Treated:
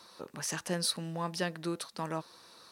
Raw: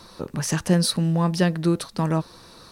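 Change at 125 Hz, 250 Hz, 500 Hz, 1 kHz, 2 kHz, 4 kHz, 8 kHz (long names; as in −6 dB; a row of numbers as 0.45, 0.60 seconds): −18.5, −16.5, −11.0, −8.5, −7.5, −7.0, −7.0 decibels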